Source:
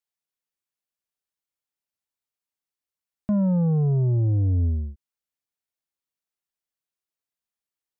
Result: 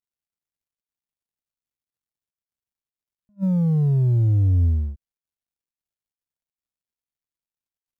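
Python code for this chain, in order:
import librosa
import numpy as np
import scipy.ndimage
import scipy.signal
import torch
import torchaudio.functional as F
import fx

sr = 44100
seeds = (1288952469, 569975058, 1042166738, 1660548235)

y = fx.law_mismatch(x, sr, coded='mu')
y = fx.low_shelf(y, sr, hz=250.0, db=11.5)
y = fx.attack_slew(y, sr, db_per_s=510.0)
y = y * librosa.db_to_amplitude(-7.0)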